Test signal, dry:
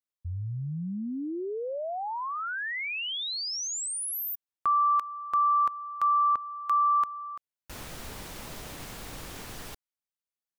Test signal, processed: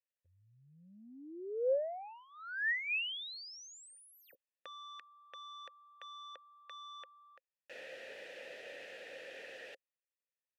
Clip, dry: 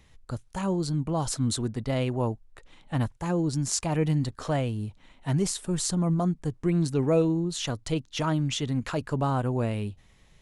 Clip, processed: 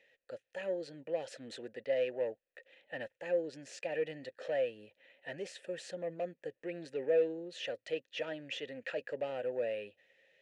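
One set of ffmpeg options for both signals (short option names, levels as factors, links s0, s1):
-filter_complex "[0:a]asplit=2[s0][s1];[s1]highpass=f=720:p=1,volume=7.08,asoftclip=type=tanh:threshold=0.266[s2];[s0][s2]amix=inputs=2:normalize=0,lowpass=f=7900:p=1,volume=0.501,asplit=3[s3][s4][s5];[s3]bandpass=f=530:t=q:w=8,volume=1[s6];[s4]bandpass=f=1840:t=q:w=8,volume=0.501[s7];[s5]bandpass=f=2480:t=q:w=8,volume=0.355[s8];[s6][s7][s8]amix=inputs=3:normalize=0,volume=0.75"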